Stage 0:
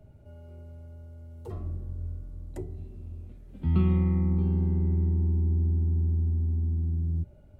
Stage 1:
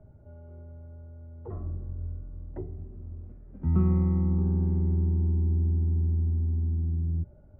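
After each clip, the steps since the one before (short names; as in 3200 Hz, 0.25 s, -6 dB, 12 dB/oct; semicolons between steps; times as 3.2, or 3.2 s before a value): LPF 1600 Hz 24 dB/oct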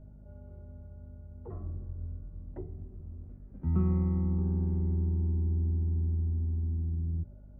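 hum 50 Hz, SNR 19 dB; gain -4 dB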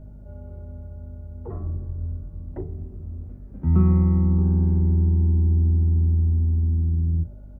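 doubler 37 ms -12.5 dB; gain +8.5 dB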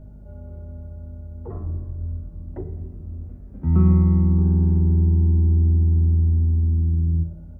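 Schroeder reverb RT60 1.1 s, combs from 33 ms, DRR 11 dB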